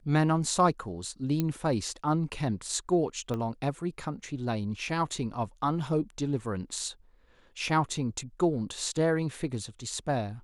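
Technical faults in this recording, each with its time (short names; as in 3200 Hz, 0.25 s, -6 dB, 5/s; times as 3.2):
1.4 pop -15 dBFS
3.34 pop -22 dBFS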